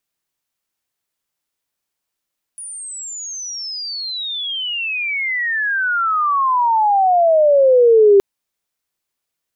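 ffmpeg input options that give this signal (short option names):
-f lavfi -i "aevalsrc='pow(10,(-28.5+22.5*t/5.62)/20)*sin(2*PI*9800*5.62/log(390/9800)*(exp(log(390/9800)*t/5.62)-1))':d=5.62:s=44100"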